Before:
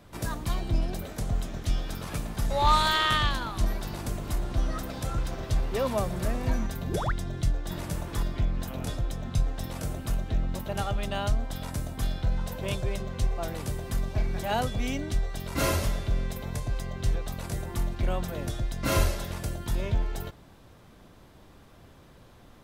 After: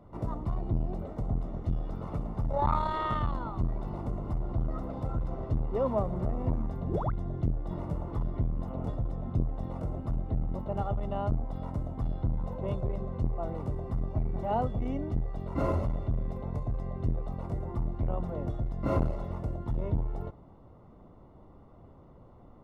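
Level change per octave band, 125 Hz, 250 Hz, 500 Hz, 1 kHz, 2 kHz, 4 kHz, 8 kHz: -1.0 dB, -0.5 dB, -1.5 dB, -4.5 dB, -16.0 dB, under -20 dB, under -25 dB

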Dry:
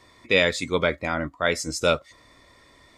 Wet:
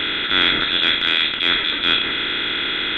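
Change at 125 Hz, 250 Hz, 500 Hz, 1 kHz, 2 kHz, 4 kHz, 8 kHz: -4.5 dB, +2.0 dB, -8.0 dB, +4.0 dB, +7.5 dB, +16.0 dB, under -20 dB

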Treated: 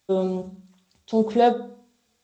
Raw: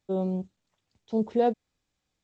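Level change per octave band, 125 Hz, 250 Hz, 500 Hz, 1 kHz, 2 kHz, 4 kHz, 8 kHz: +1.5 dB, +4.0 dB, +6.0 dB, +8.5 dB, +10.5 dB, +12.5 dB, no reading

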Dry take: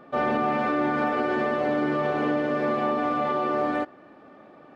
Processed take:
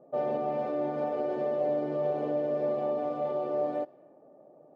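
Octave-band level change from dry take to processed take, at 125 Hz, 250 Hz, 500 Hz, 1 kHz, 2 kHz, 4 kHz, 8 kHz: -7.0 dB, -9.5 dB, -2.0 dB, -10.0 dB, -20.5 dB, under -15 dB, no reading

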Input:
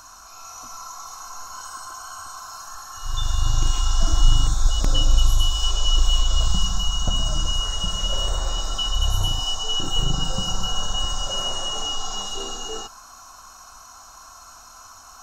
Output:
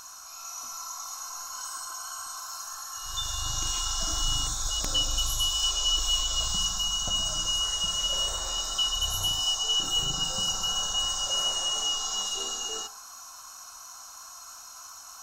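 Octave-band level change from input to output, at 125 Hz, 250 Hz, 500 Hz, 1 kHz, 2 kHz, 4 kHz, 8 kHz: -14.5 dB, -10.5 dB, -7.0 dB, -5.0 dB, -3.0 dB, -0.5 dB, +2.5 dB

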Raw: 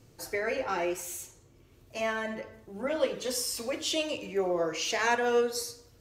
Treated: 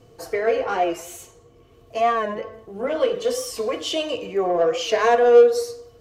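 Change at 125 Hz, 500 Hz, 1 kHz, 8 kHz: +4.0 dB, +12.0 dB, +10.5 dB, 0.0 dB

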